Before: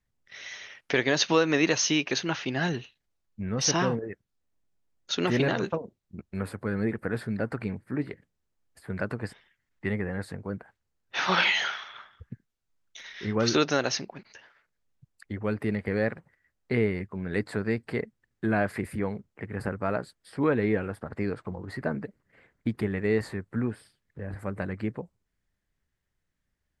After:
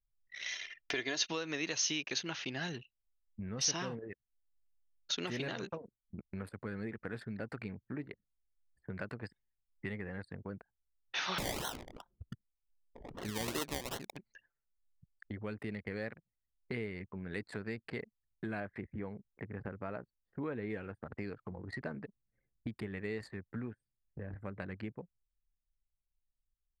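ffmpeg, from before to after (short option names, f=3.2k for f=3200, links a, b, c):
-filter_complex "[0:a]asettb=1/sr,asplit=3[a][b][c];[a]atrim=end=0.484[d];[b]atrim=start=0.48:end=1.28,asetpts=PTS-STARTPTS,afade=t=in:d=0.004:c=qsin,afade=t=out:st=0.796:d=0.004:c=qsin,aecho=1:1:2.9:0.65,atrim=end_sample=35280[e];[c]atrim=start=1.276[f];[d][e]acrossfade=d=0.004:c1=hsin:c2=qsin[g];[g][f]acrossfade=d=0.004:c1=qsin:c2=hsin,asettb=1/sr,asplit=3[h][i][j];[h]atrim=end=11.384[k];[i]atrim=start=11.38:end=14.17,asetpts=PTS-STARTPTS,afade=t=in:d=0.004:c=qsin,afade=t=out:st=2.786:d=0.004:c=qsin,acrusher=samples=26:mix=1:aa=0.000001:lfo=1:lforange=15.6:lforate=2.6[l];[j]atrim=start=14.166[m];[k][l]acrossfade=d=0.004:c1=hsin:c2=qsin[n];[n][m]acrossfade=d=0.004:c1=qsin:c2=hsin,asettb=1/sr,asplit=3[o][p][q];[o]atrim=end=18.604[r];[p]atrim=start=18.6:end=20.7,asetpts=PTS-STARTPTS,afade=t=in:d=0.004:c=qsin,afade=t=out:st=2.096:d=0.004:c=qsin,lowpass=f=1.7k:p=1[s];[q]atrim=start=20.696[t];[r][s]acrossfade=d=0.004:c1=hsin:c2=qsin[u];[u][t]acrossfade=d=0.004:c1=qsin:c2=hsin,anlmdn=0.251,acompressor=threshold=-44dB:ratio=2.5,adynamicequalizer=threshold=0.00126:dfrequency=2000:dqfactor=0.7:tfrequency=2000:tqfactor=0.7:attack=5:release=100:ratio=0.375:range=4:mode=boostabove:tftype=highshelf"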